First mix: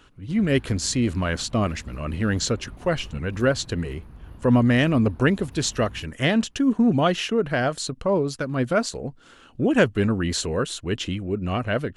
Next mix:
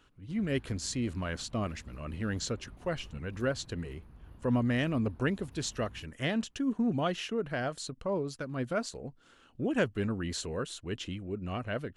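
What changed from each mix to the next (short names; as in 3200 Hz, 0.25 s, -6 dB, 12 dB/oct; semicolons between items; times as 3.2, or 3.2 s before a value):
speech -10.5 dB; background -9.5 dB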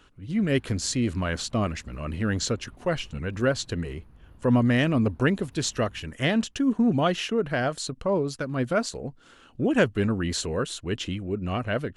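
speech +7.5 dB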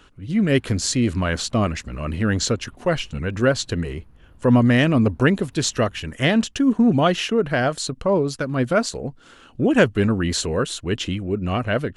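speech +5.5 dB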